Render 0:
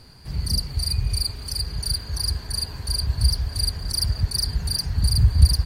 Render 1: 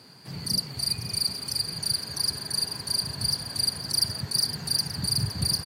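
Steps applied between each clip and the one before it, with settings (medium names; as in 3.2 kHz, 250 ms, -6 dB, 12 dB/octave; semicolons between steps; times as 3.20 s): high-pass 140 Hz 24 dB/octave; on a send: multi-tap echo 514/774 ms -12/-12 dB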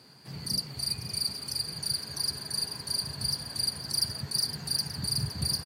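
doubling 14 ms -13 dB; trim -4 dB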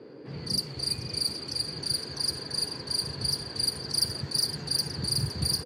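level-controlled noise filter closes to 2.1 kHz, open at -25.5 dBFS; band noise 240–510 Hz -49 dBFS; trim +2 dB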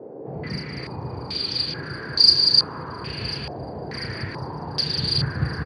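on a send: loudspeakers at several distances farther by 11 m -6 dB, 65 m -5 dB; on the sum: step-sequenced low-pass 2.3 Hz 720–4600 Hz; trim +4 dB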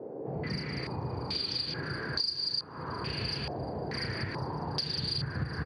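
compression 8:1, threshold -27 dBFS, peak gain reduction 18 dB; trim -2.5 dB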